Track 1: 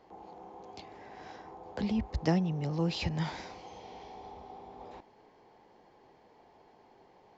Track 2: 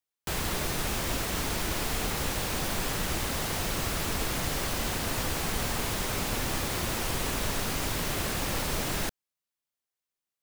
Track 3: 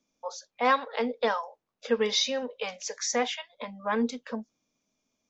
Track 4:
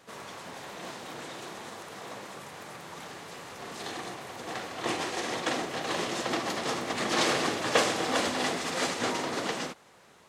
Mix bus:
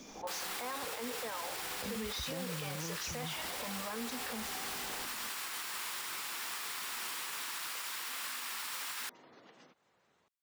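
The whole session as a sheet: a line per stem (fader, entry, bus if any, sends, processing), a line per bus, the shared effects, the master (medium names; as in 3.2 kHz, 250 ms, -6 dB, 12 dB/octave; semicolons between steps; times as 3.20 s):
+0.5 dB, 0.05 s, no send, compression, threshold -36 dBFS, peak gain reduction 13 dB
-5.5 dB, 0.00 s, no send, steep high-pass 950 Hz 36 dB/octave; band-stop 6.3 kHz, Q 17
-14.0 dB, 0.00 s, no send, level flattener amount 70%
-15.5 dB, 0.00 s, no send, spectral gate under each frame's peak -20 dB strong; compression 6:1, threshold -41 dBFS, peak gain reduction 20 dB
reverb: none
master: peak limiter -30 dBFS, peak gain reduction 8 dB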